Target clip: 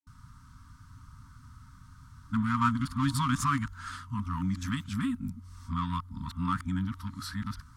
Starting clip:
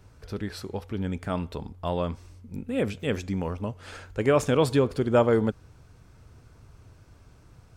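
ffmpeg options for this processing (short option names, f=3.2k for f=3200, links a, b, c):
-filter_complex "[0:a]areverse,equalizer=f=400:t=o:w=0.33:g=12,equalizer=f=1.25k:t=o:w=0.33:g=10,equalizer=f=2.5k:t=o:w=0.33:g=-11,equalizer=f=10k:t=o:w=0.33:g=3,asplit=2[a][b];[b]asoftclip=type=tanh:threshold=-27.5dB,volume=-4dB[c];[a][c]amix=inputs=2:normalize=0,afftfilt=real='re*(1-between(b*sr/4096,280,900))':imag='im*(1-between(b*sr/4096,280,900))':win_size=4096:overlap=0.75,volume=-3.5dB"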